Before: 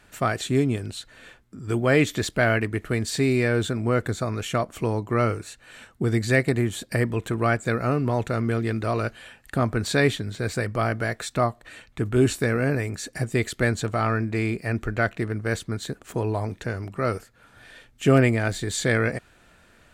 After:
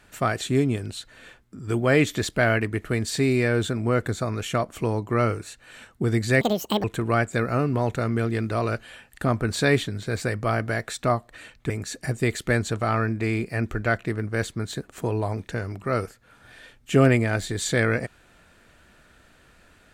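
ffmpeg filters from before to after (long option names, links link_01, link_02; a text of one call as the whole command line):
ffmpeg -i in.wav -filter_complex "[0:a]asplit=4[link_01][link_02][link_03][link_04];[link_01]atrim=end=6.414[link_05];[link_02]atrim=start=6.41:end=7.16,asetpts=PTS-STARTPTS,asetrate=77175,aresample=44100[link_06];[link_03]atrim=start=7.156:end=12.022[link_07];[link_04]atrim=start=12.818[link_08];[link_05][link_06]acrossfade=duration=0.004:curve1=hsin:curve2=hsin[link_09];[link_09][link_07]acrossfade=duration=0.004:curve1=hsin:curve2=hsin[link_10];[link_10][link_08]acrossfade=duration=0.004:curve1=hsin:curve2=hsin" out.wav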